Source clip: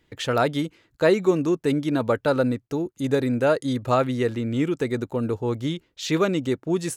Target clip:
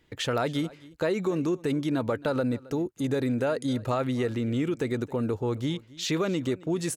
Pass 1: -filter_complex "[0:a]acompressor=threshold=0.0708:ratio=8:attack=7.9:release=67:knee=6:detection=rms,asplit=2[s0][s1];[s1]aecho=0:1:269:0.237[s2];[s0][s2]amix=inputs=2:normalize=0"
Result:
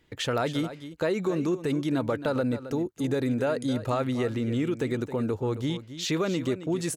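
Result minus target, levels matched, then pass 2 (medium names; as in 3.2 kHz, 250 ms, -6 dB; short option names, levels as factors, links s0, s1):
echo-to-direct +8.5 dB
-filter_complex "[0:a]acompressor=threshold=0.0708:ratio=8:attack=7.9:release=67:knee=6:detection=rms,asplit=2[s0][s1];[s1]aecho=0:1:269:0.0891[s2];[s0][s2]amix=inputs=2:normalize=0"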